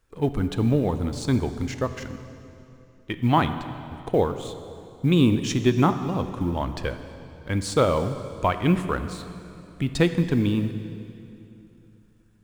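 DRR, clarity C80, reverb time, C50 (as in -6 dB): 9.5 dB, 11.0 dB, 2.9 s, 10.5 dB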